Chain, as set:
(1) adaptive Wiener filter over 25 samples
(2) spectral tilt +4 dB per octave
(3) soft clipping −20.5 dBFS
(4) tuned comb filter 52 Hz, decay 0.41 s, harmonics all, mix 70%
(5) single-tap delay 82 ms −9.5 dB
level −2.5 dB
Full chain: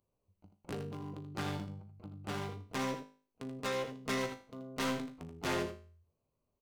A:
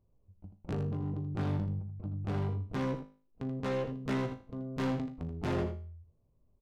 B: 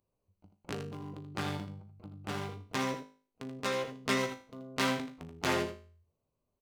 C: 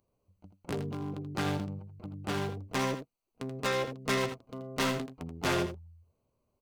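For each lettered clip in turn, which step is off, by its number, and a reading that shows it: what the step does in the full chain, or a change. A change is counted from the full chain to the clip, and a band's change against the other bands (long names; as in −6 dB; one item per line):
2, 125 Hz band +11.5 dB
3, distortion level −10 dB
4, change in crest factor −1.5 dB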